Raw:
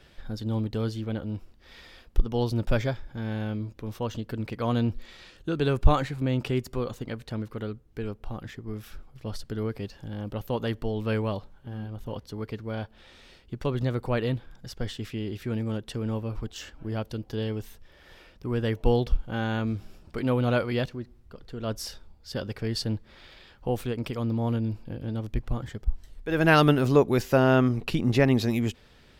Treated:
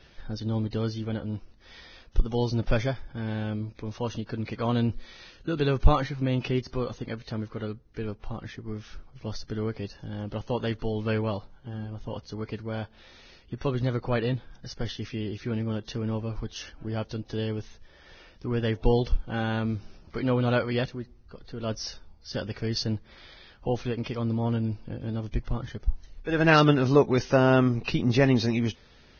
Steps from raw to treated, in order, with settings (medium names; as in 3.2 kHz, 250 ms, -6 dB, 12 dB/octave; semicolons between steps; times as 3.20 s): Vorbis 16 kbps 16 kHz